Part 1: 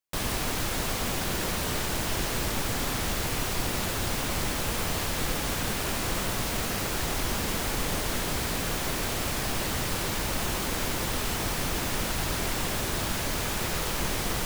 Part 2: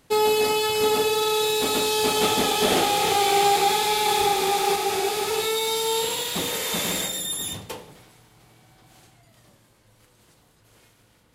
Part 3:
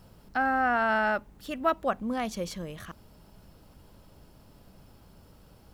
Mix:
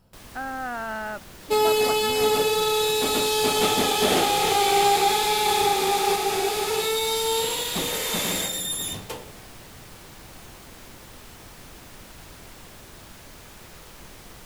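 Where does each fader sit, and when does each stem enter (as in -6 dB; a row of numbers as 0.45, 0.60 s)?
-15.5, 0.0, -6.0 dB; 0.00, 1.40, 0.00 s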